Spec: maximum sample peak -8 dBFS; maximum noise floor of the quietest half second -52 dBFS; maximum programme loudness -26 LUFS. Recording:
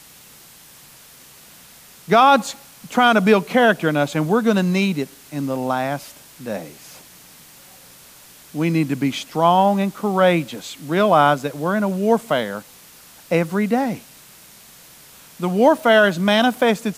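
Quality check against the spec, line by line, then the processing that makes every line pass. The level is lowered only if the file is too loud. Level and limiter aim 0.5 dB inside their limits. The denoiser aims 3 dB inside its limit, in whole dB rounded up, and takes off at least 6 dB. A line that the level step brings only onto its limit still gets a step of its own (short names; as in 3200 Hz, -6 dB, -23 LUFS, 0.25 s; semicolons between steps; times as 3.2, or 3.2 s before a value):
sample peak -3.5 dBFS: fail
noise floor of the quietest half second -46 dBFS: fail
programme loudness -18.0 LUFS: fail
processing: gain -8.5 dB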